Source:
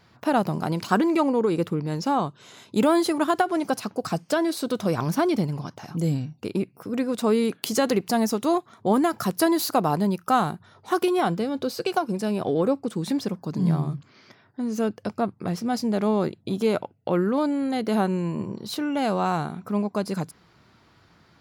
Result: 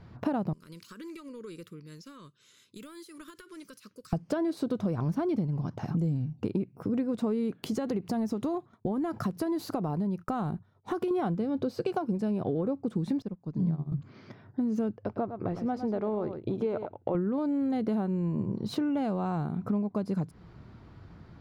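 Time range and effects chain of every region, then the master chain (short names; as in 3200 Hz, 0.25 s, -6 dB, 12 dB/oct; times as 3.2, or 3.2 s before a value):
0.53–4.13 pre-emphasis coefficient 0.97 + compressor 12:1, threshold -40 dBFS + Butterworth band-stop 770 Hz, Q 1.3
7.67–11.11 expander -42 dBFS + compressor 2:1, threshold -33 dBFS
13.22–13.92 LPF 11000 Hz + upward expander 2.5:1, over -34 dBFS
14.97–17.15 LPF 1700 Hz 6 dB/oct + bell 180 Hz -13 dB 1.1 oct + echo 0.108 s -11.5 dB
whole clip: tilt -3.5 dB/oct; compressor 6:1, threshold -27 dBFS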